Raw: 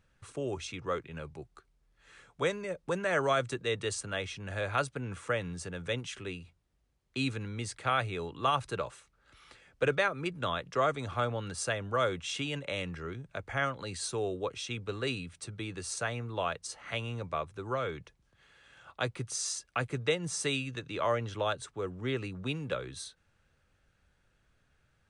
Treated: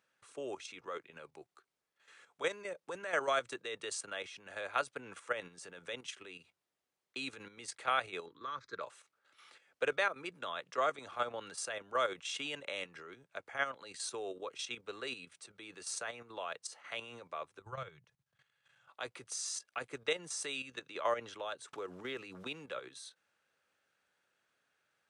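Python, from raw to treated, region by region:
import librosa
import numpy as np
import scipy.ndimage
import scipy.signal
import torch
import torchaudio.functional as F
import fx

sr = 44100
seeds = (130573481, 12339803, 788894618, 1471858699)

y = fx.chain(x, sr, fx.air_absorb(metres=87.0),
    fx.fixed_phaser(hz=2800.0, stages=6), at=(8.26, 8.81))
y = fx.chain(y, sr, fx.low_shelf_res(hz=190.0, db=12.5, q=3.0),
    fx.level_steps(step_db=14), at=(17.59, 18.89))
y = fx.chain(y, sr, fx.block_float(bits=7),
    fx.lowpass(hz=8700.0, slope=12),
    fx.pre_swell(db_per_s=31.0), at=(21.73, 22.64))
y = scipy.signal.sosfilt(scipy.signal.bessel(2, 490.0, 'highpass', norm='mag', fs=sr, output='sos'), y)
y = fx.level_steps(y, sr, step_db=10)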